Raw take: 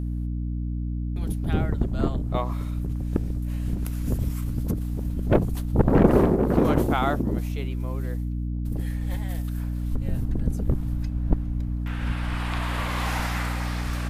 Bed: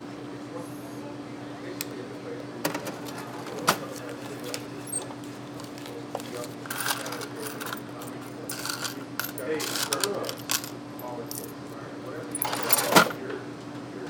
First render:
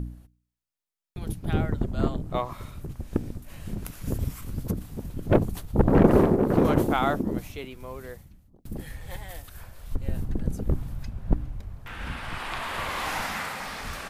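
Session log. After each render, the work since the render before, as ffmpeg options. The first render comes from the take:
-af "bandreject=f=60:t=h:w=4,bandreject=f=120:t=h:w=4,bandreject=f=180:t=h:w=4,bandreject=f=240:t=h:w=4,bandreject=f=300:t=h:w=4"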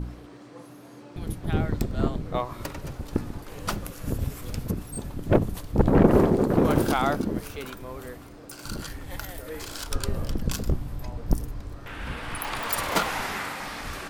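-filter_complex "[1:a]volume=0.398[s0];[0:a][s0]amix=inputs=2:normalize=0"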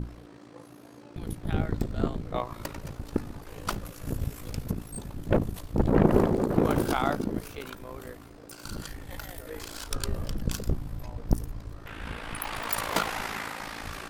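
-af "tremolo=f=55:d=0.71"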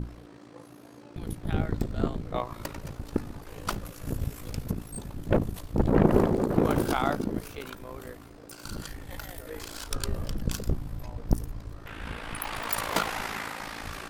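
-af anull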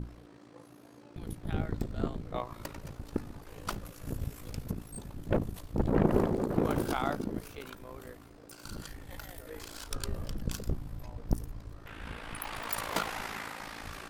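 -af "volume=0.562"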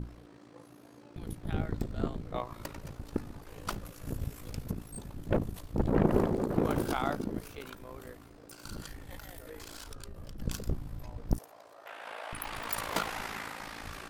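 -filter_complex "[0:a]asettb=1/sr,asplit=3[s0][s1][s2];[s0]atrim=end=9.174[s3];[s1]atrim=start=9.17:end=10.39,asetpts=PTS-STARTPTS,afade=t=in:d=0.004:c=qsin,afade=t=out:st=1.216:d=0.004:c=qsin,acompressor=threshold=0.01:ratio=6:attack=3.2:release=140:knee=1:detection=peak[s4];[s2]atrim=start=10.386[s5];[s3][s4]acrossfade=d=0.004:c1=hsin:c2=qsin[s6];[s6][s5]acrossfade=d=0.004:c1=qsin:c2=hsin,asettb=1/sr,asplit=3[s7][s8][s9];[s7]atrim=end=11.384[s10];[s8]atrim=start=11.38:end=12.33,asetpts=PTS-STARTPTS,afade=t=in:d=0.004:c=qsin,afade=t=out:st=0.946:d=0.004:c=qsin,highpass=f=650:t=q:w=3.1[s11];[s9]atrim=start=12.326[s12];[s10][s11]acrossfade=d=0.004:c1=hsin:c2=qsin[s13];[s13][s12]acrossfade=d=0.004:c1=qsin:c2=hsin"

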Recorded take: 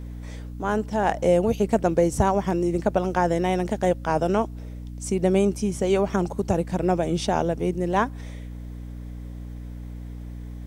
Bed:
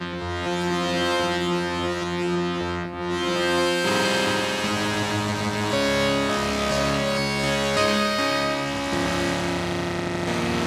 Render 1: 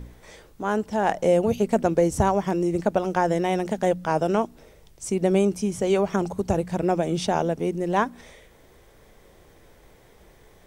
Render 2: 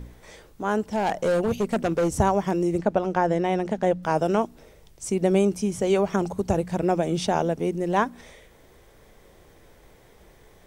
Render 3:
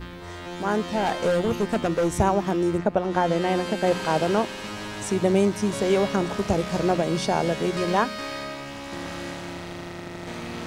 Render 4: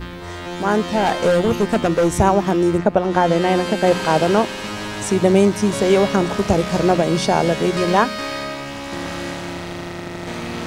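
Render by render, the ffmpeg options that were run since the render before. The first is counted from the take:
-af "bandreject=f=60:t=h:w=4,bandreject=f=120:t=h:w=4,bandreject=f=180:t=h:w=4,bandreject=f=240:t=h:w=4,bandreject=f=300:t=h:w=4"
-filter_complex "[0:a]asettb=1/sr,asplit=3[s0][s1][s2];[s0]atrim=end=0.864[s3];[s1]atrim=start=0.86:end=2.09,asetpts=PTS-STARTPTS,afade=t=in:d=0.004:c=qsin,afade=t=out:st=1.226:d=0.004:c=qsin,asoftclip=type=hard:threshold=0.119[s4];[s2]atrim=start=2.086[s5];[s3][s4]acrossfade=d=0.004:c1=hsin:c2=qsin[s6];[s6][s5]acrossfade=d=0.004:c1=qsin:c2=hsin,asettb=1/sr,asplit=3[s7][s8][s9];[s7]atrim=end=2.784[s10];[s8]atrim=start=2.78:end=4.03,asetpts=PTS-STARTPTS,afade=t=in:d=0.004:c=qsin,afade=t=out:st=1.246:d=0.004:c=qsin,aemphasis=mode=reproduction:type=50kf[s11];[s9]atrim=start=4.026[s12];[s10][s11]acrossfade=d=0.004:c1=hsin:c2=qsin[s13];[s13][s12]acrossfade=d=0.004:c1=qsin:c2=hsin"
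-filter_complex "[1:a]volume=0.316[s0];[0:a][s0]amix=inputs=2:normalize=0"
-af "volume=2.11,alimiter=limit=0.794:level=0:latency=1"

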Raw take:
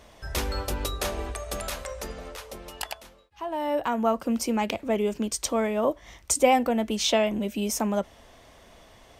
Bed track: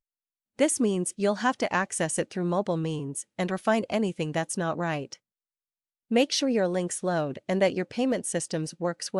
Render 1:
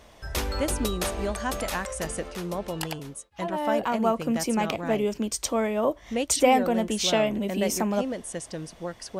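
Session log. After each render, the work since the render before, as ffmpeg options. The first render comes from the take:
-filter_complex "[1:a]volume=0.531[s0];[0:a][s0]amix=inputs=2:normalize=0"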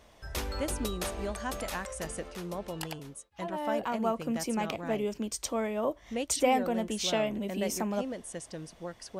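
-af "volume=0.501"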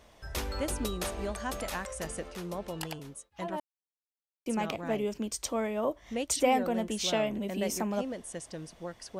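-filter_complex "[0:a]asplit=3[s0][s1][s2];[s0]atrim=end=3.6,asetpts=PTS-STARTPTS,afade=t=out:st=3.596:d=0.004:c=hsin[s3];[s1]atrim=start=3.6:end=4.46,asetpts=PTS-STARTPTS,volume=0[s4];[s2]atrim=start=4.46,asetpts=PTS-STARTPTS,afade=t=in:d=0.004:c=hsin[s5];[s3][s4][s5]concat=n=3:v=0:a=1"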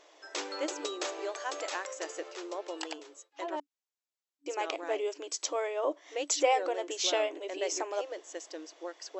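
-af "afftfilt=real='re*between(b*sr/4096,290,7900)':imag='im*between(b*sr/4096,290,7900)':win_size=4096:overlap=0.75,highshelf=f=5400:g=4.5"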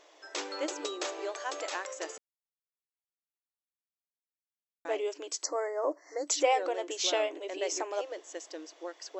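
-filter_complex "[0:a]asettb=1/sr,asplit=3[s0][s1][s2];[s0]atrim=end=5.434[s3];[s1]atrim=start=5.43:end=6.27,asetpts=PTS-STARTPTS,afade=t=in:d=0.004:c=qsin,afade=t=out:st=0.836:d=0.004:c=qsin,asuperstop=centerf=3000:order=20:qfactor=1.4[s4];[s2]atrim=start=6.266[s5];[s3][s4]acrossfade=d=0.004:c1=hsin:c2=qsin[s6];[s6][s5]acrossfade=d=0.004:c1=qsin:c2=hsin,asplit=3[s7][s8][s9];[s7]atrim=end=2.18,asetpts=PTS-STARTPTS,afade=t=out:st=2.176:d=0.004:c=hsin[s10];[s8]atrim=start=2.18:end=4.85,asetpts=PTS-STARTPTS,volume=0[s11];[s9]atrim=start=4.85,asetpts=PTS-STARTPTS,afade=t=in:d=0.004:c=hsin[s12];[s10][s11][s12]concat=n=3:v=0:a=1"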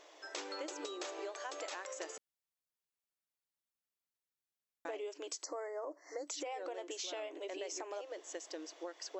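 -af "alimiter=level_in=1.06:limit=0.0631:level=0:latency=1:release=50,volume=0.944,acompressor=threshold=0.01:ratio=6"

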